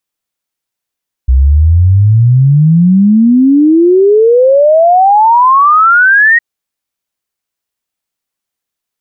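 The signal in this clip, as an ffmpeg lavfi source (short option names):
-f lavfi -i "aevalsrc='0.708*clip(min(t,5.11-t)/0.01,0,1)*sin(2*PI*62*5.11/log(1900/62)*(exp(log(1900/62)*t/5.11)-1))':d=5.11:s=44100"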